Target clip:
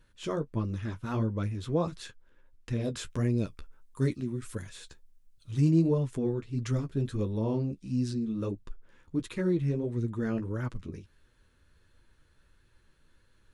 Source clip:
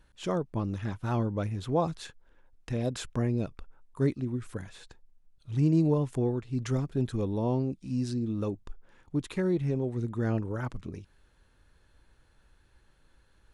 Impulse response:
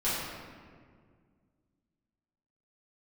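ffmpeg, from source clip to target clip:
-filter_complex "[0:a]asettb=1/sr,asplit=3[a][b][c];[a]atrim=end=3.094[d];[b]atrim=start=3.09:end=5.71,asetpts=PTS-STARTPTS,afade=t=in:d=0.004:c=qsin,afade=t=out:st=2.616:d=0.004:c=qsin,highshelf=f=4.3k:g=9.5[e];[c]atrim=start=5.706[f];[d][e]acrossfade=d=0.004:c1=hsin:c2=qsin[g];[g][f]acrossfade=d=0.004:c1=qsin:c2=hsin,flanger=delay=8.2:depth=5.7:regen=-26:speed=1.5:shape=sinusoidal,equalizer=f=770:w=3:g=-8.5,volume=3dB"

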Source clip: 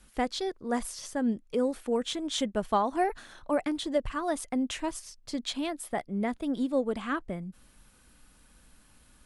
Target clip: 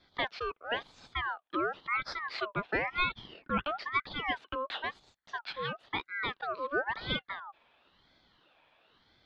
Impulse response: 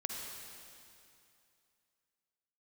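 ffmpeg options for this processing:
-af "asuperstop=centerf=1100:order=20:qfactor=5.6,highpass=180,equalizer=f=240:t=q:w=4:g=-5,equalizer=f=1k:t=q:w=4:g=-9,equalizer=f=1.7k:t=q:w=4:g=8,equalizer=f=2.5k:t=q:w=4:g=8,lowpass=f=3k:w=0.5412,lowpass=f=3k:w=1.3066,aeval=exprs='val(0)*sin(2*PI*1300*n/s+1300*0.4/0.98*sin(2*PI*0.98*n/s))':c=same"

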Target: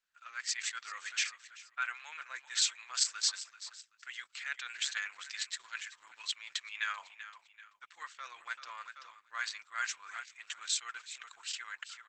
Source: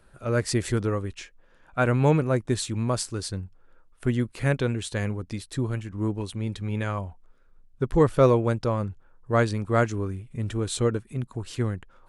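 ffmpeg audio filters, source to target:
-af "agate=range=-25dB:threshold=-49dB:ratio=16:detection=peak,aresample=22050,aresample=44100,aecho=1:1:5.8:0.42,aecho=1:1:386|772|1158:0.126|0.0504|0.0201,areverse,acompressor=threshold=-31dB:ratio=10,areverse,highpass=f=1.5k:w=0.5412,highpass=f=1.5k:w=1.3066,dynaudnorm=f=180:g=5:m=4.5dB,volume=5dB" -ar 48000 -c:a libopus -b:a 10k

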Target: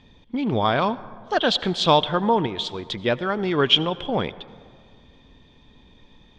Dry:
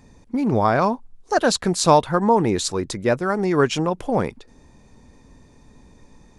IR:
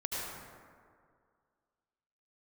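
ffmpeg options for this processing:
-filter_complex "[0:a]asettb=1/sr,asplit=3[a][b][c];[a]atrim=end=2.464[d];[b]atrim=start=2.46:end=2.91,asetpts=PTS-STARTPTS,afade=t=in:d=0.004:c=qsin,afade=t=out:st=0.446:d=0.004:c=qsin,acompressor=threshold=-25dB:ratio=6[e];[c]atrim=start=2.906[f];[d][e]acrossfade=d=0.004:c1=hsin:c2=qsin[g];[g][f]acrossfade=d=0.004:c1=qsin:c2=hsin,lowpass=f=3.3k:t=q:w=14,asplit=2[h][i];[1:a]atrim=start_sample=2205[j];[i][j]afir=irnorm=-1:irlink=0,volume=-20.5dB[k];[h][k]amix=inputs=2:normalize=0,volume=-4dB"

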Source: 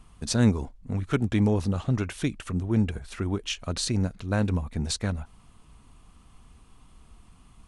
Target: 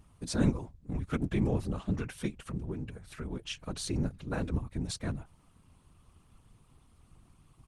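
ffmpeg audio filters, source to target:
-filter_complex "[0:a]asettb=1/sr,asplit=3[a][b][c];[a]atrim=end=2.504[d];[b]atrim=start=2.5:end=3.36,asetpts=PTS-STARTPTS,afade=t=in:d=0.004:c=qsin,afade=t=out:st=0.856:d=0.004:c=qsin,acompressor=threshold=-27dB:ratio=16[e];[c]atrim=start=3.356[f];[d][e]acrossfade=d=0.004:c1=hsin:c2=qsin[g];[g][f]acrossfade=d=0.004:c1=qsin:c2=hsin,asplit=3[h][i][j];[h]afade=t=out:st=4.04:d=0.02[k];[i]bandreject=f=50:t=h:w=6,bandreject=f=100:t=h:w=6,bandreject=f=150:t=h:w=6,bandreject=f=200:t=h:w=6,bandreject=f=250:t=h:w=6,afade=t=in:st=4.04:d=0.02,afade=t=out:st=4.64:d=0.02[l];[j]afade=t=in:st=4.64:d=0.02[m];[k][l][m]amix=inputs=3:normalize=0,afftfilt=real='hypot(re,im)*cos(2*PI*random(0))':imag='hypot(re,im)*sin(2*PI*random(1))':win_size=512:overlap=0.75,aresample=32000,aresample=44100" -ar 48000 -c:a libopus -b:a 24k

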